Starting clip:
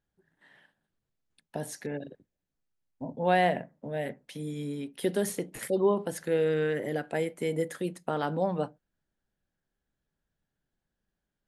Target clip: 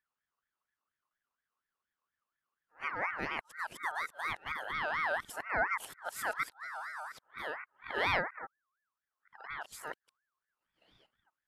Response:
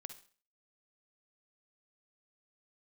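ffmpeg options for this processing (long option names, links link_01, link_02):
-af "areverse,aeval=exprs='val(0)*sin(2*PI*1400*n/s+1400*0.25/4.2*sin(2*PI*4.2*n/s))':channel_layout=same,volume=-4.5dB"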